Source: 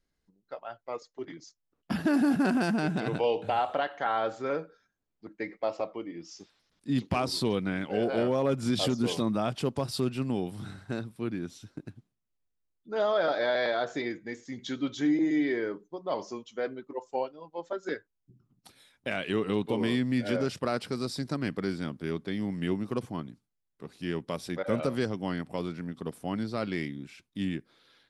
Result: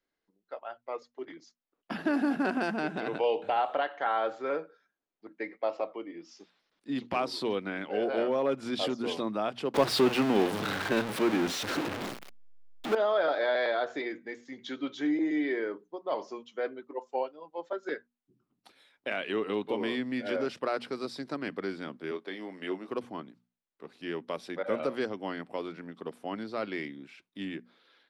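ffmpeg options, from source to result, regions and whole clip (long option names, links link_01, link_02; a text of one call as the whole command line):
ffmpeg -i in.wav -filter_complex "[0:a]asettb=1/sr,asplit=3[link_01][link_02][link_03];[link_01]atrim=end=9.744[link_04];[link_02]atrim=start=9.74:end=12.95,asetpts=PTS-STARTPTS,afade=type=in:duration=0.004:curve=qsin,afade=type=out:start_time=3.206:duration=0.004:curve=qsin,aeval=exprs='val(0)+0.5*0.0299*sgn(val(0))':channel_layout=same,acontrast=77[link_05];[link_03]atrim=start=12.946[link_06];[link_04][link_05]acrossfade=duration=0.004:curve1=hsin:curve2=qsin[link_07];[link_07][link_06]acrossfade=duration=0.004:curve1=qsin:curve2=hsin,asettb=1/sr,asplit=3[link_08][link_09][link_10];[link_08]atrim=end=22.114[link_11];[link_09]atrim=start=22.11:end=22.88,asetpts=PTS-STARTPTS,afade=type=in:duration=0.004:curve=qsin,afade=type=out:start_time=0.766:duration=0.004:curve=qsin,highpass=300,asplit=2[link_12][link_13];[link_13]adelay=22,volume=-9dB[link_14];[link_12][link_14]amix=inputs=2:normalize=0,atrim=end_sample=33957[link_15];[link_10]atrim=start=22.876[link_16];[link_11][link_15]acrossfade=duration=0.004:curve1=hsin:curve2=qsin[link_17];[link_17][link_16]acrossfade=duration=0.004:curve1=qsin:curve2=hsin,acrossover=split=250 4200:gain=0.126 1 0.251[link_18][link_19][link_20];[link_18][link_19][link_20]amix=inputs=3:normalize=0,bandreject=frequency=60:width_type=h:width=6,bandreject=frequency=120:width_type=h:width=6,bandreject=frequency=180:width_type=h:width=6,bandreject=frequency=240:width_type=h:width=6" out.wav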